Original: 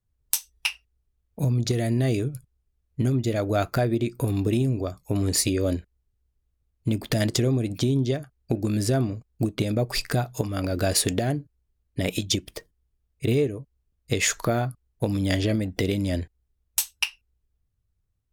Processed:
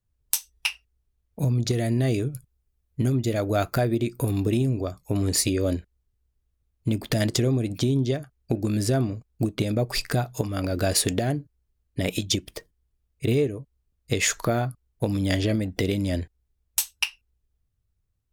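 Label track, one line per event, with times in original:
2.300000	4.460000	high-shelf EQ 10,000 Hz +6 dB

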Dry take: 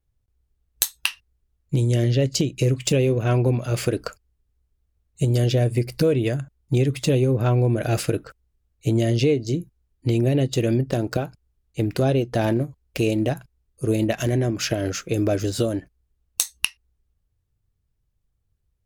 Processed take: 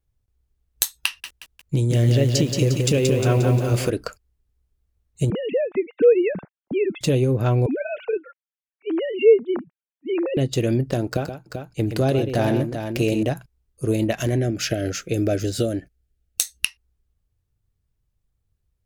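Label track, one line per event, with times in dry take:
1.060000	3.900000	feedback echo at a low word length 177 ms, feedback 55%, word length 7 bits, level −4 dB
5.300000	7.010000	three sine waves on the formant tracks
7.660000	10.370000	three sine waves on the formant tracks
11.070000	13.230000	multi-tap delay 124/389 ms −8.5/−7.5 dB
14.390000	16.650000	Butterworth band-reject 1,000 Hz, Q 2.1

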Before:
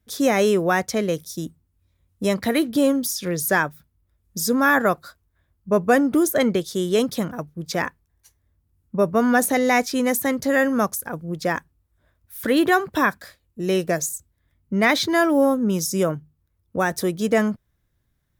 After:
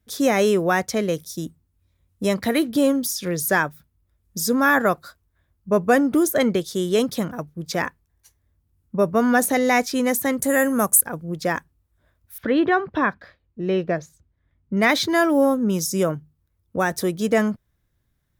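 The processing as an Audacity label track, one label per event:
10.380000	11.010000	high shelf with overshoot 6,600 Hz +10 dB, Q 3
12.380000	14.770000	high-frequency loss of the air 290 metres

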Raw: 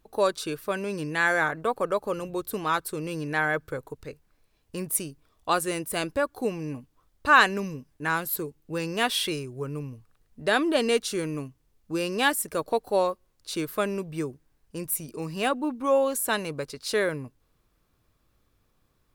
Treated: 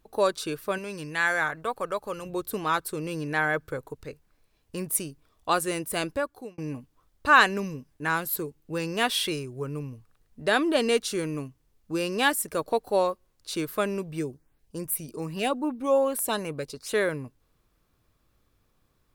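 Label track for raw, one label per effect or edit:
0.780000	2.260000	parametric band 300 Hz −6.5 dB 2.7 octaves
6.070000	6.580000	fade out
14.190000	16.940000	auto-filter notch saw up 2.5 Hz 890–7,800 Hz

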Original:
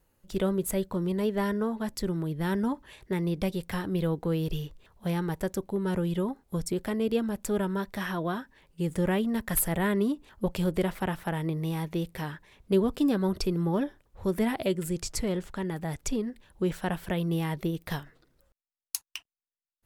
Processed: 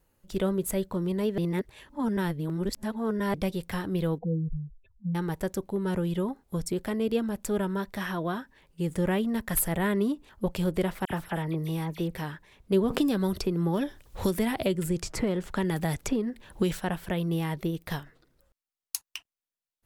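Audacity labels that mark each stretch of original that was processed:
1.380000	3.340000	reverse
4.180000	5.150000	expanding power law on the bin magnitudes exponent 3.6
11.050000	12.150000	all-pass dispersion lows, late by 53 ms, half as late at 2,800 Hz
12.900000	16.800000	multiband upward and downward compressor depth 100%

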